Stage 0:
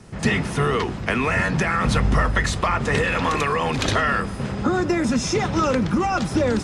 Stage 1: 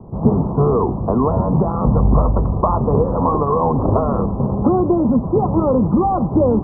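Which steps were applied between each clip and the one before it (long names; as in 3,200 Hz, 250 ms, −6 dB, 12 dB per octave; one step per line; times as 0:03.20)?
Butterworth low-pass 1,100 Hz 72 dB per octave
in parallel at +3 dB: speech leveller 0.5 s
on the sum: level −1 dB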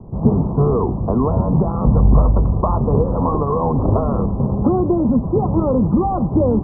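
spectral tilt −1.5 dB per octave
level −3.5 dB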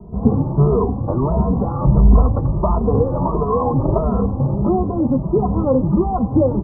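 double-tracking delay 15 ms −14 dB
barber-pole flanger 2.7 ms +1.5 Hz
level +2.5 dB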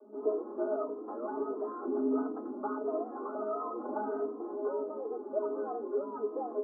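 tuned comb filter 210 Hz, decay 0.2 s, harmonics all, mix 90%
frequency shifter +210 Hz
level −8 dB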